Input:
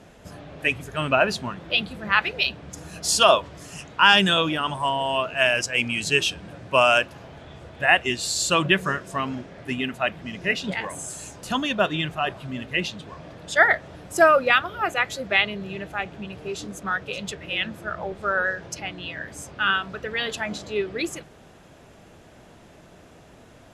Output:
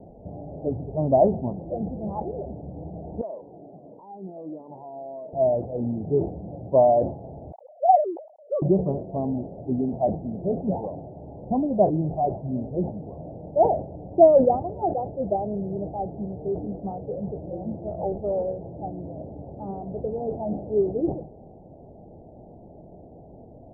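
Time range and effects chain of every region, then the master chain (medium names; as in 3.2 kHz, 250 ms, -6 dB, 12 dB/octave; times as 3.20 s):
3.21–5.33 s: high-pass 280 Hz + compression 3:1, threshold -36 dBFS + Shepard-style phaser falling 1.5 Hz
7.52–8.62 s: formants replaced by sine waves + high-pass 500 Hz 24 dB/octave
whole clip: steep low-pass 820 Hz 72 dB/octave; decay stretcher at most 120 dB/s; trim +4 dB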